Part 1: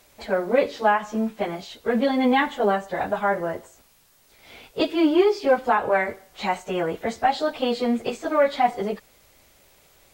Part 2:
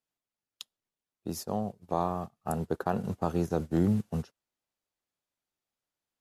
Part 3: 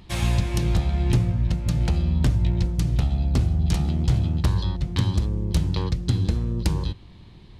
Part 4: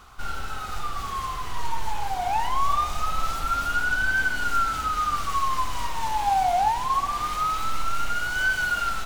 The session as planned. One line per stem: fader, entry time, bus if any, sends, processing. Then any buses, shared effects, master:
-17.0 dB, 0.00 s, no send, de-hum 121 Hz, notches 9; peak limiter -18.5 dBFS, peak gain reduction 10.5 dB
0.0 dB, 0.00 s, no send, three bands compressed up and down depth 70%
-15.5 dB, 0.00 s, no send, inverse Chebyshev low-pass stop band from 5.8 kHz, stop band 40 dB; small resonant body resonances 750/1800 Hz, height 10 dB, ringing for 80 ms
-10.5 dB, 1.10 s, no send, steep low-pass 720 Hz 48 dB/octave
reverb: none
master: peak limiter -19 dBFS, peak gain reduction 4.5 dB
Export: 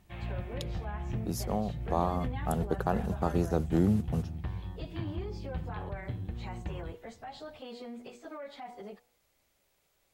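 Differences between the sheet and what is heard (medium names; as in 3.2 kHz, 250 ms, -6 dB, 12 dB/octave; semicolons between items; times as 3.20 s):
stem 2: missing three bands compressed up and down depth 70%; stem 4: muted; master: missing peak limiter -19 dBFS, peak gain reduction 4.5 dB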